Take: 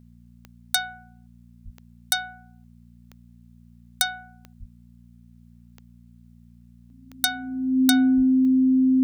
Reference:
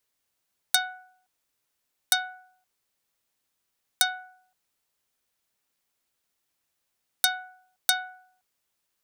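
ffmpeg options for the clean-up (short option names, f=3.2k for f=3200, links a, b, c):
-filter_complex "[0:a]adeclick=t=4,bandreject=f=58.9:t=h:w=4,bandreject=f=117.8:t=h:w=4,bandreject=f=176.7:t=h:w=4,bandreject=f=235.6:t=h:w=4,bandreject=f=260:w=30,asplit=3[a][b][c];[a]afade=t=out:st=1.64:d=0.02[d];[b]highpass=f=140:w=0.5412,highpass=f=140:w=1.3066,afade=t=in:st=1.64:d=0.02,afade=t=out:st=1.76:d=0.02[e];[c]afade=t=in:st=1.76:d=0.02[f];[d][e][f]amix=inputs=3:normalize=0,asplit=3[g][h][i];[g]afade=t=out:st=4.59:d=0.02[j];[h]highpass=f=140:w=0.5412,highpass=f=140:w=1.3066,afade=t=in:st=4.59:d=0.02,afade=t=out:st=4.71:d=0.02[k];[i]afade=t=in:st=4.71:d=0.02[l];[j][k][l]amix=inputs=3:normalize=0,asplit=3[m][n][o];[m]afade=t=out:st=8.16:d=0.02[p];[n]highpass=f=140:w=0.5412,highpass=f=140:w=1.3066,afade=t=in:st=8.16:d=0.02,afade=t=out:st=8.28:d=0.02[q];[o]afade=t=in:st=8.28:d=0.02[r];[p][q][r]amix=inputs=3:normalize=0"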